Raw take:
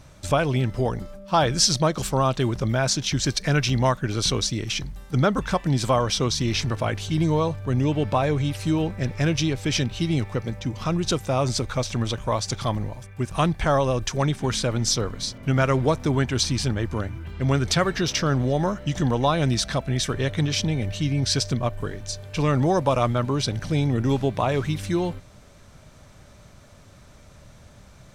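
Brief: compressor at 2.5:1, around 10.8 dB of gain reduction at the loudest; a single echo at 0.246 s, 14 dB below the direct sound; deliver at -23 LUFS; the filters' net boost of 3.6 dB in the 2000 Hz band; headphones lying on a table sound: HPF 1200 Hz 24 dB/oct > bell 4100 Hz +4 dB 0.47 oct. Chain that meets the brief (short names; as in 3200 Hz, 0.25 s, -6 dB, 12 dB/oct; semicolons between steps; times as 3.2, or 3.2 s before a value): bell 2000 Hz +5 dB; compressor 2.5:1, threshold -32 dBFS; HPF 1200 Hz 24 dB/oct; bell 4100 Hz +4 dB 0.47 oct; echo 0.246 s -14 dB; gain +12 dB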